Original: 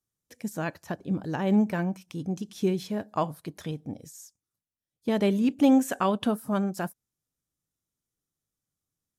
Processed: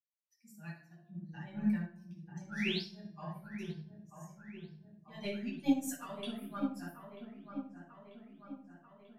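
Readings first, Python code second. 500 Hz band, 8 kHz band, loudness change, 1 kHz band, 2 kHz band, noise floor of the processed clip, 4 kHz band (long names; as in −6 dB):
−16.5 dB, −7.5 dB, −12.0 dB, −16.0 dB, −6.0 dB, −68 dBFS, −3.0 dB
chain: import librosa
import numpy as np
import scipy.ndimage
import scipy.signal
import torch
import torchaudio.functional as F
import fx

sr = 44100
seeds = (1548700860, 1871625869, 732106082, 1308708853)

p1 = fx.bin_expand(x, sr, power=2.0)
p2 = fx.tone_stack(p1, sr, knobs='5-5-5')
p3 = fx.spec_paint(p2, sr, seeds[0], shape='rise', start_s=2.49, length_s=0.35, low_hz=1300.0, high_hz=5800.0, level_db=-43.0)
p4 = fx.low_shelf_res(p3, sr, hz=130.0, db=-8.5, q=1.5)
p5 = 10.0 ** (-37.5 / 20.0) * np.tanh(p4 / 10.0 ** (-37.5 / 20.0))
p6 = p4 + F.gain(torch.from_numpy(p5), -6.0).numpy()
p7 = fx.comb_fb(p6, sr, f0_hz=350.0, decay_s=0.95, harmonics='all', damping=0.0, mix_pct=50)
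p8 = fx.tremolo_shape(p7, sr, shape='triangle', hz=3.1, depth_pct=70)
p9 = p8 + fx.echo_wet_lowpass(p8, sr, ms=940, feedback_pct=63, hz=1600.0, wet_db=-5.0, dry=0)
p10 = fx.room_shoebox(p9, sr, seeds[1], volume_m3=800.0, walls='furnished', distance_m=8.7)
p11 = fx.upward_expand(p10, sr, threshold_db=-46.0, expansion=1.5)
y = F.gain(torch.from_numpy(p11), 4.5).numpy()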